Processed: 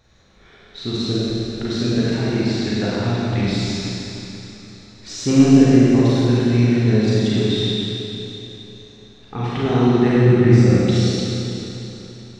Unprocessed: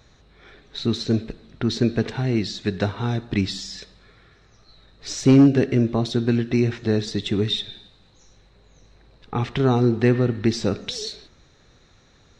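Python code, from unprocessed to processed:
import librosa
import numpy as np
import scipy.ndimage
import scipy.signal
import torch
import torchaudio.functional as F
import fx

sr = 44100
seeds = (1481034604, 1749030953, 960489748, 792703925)

y = fx.graphic_eq(x, sr, hz=(125, 250, 1000, 2000, 4000), db=(8, 5, -4, 6, -10), at=(10.16, 10.72))
y = fx.rev_schroeder(y, sr, rt60_s=3.4, comb_ms=33, drr_db=-8.5)
y = y * 10.0 ** (-5.0 / 20.0)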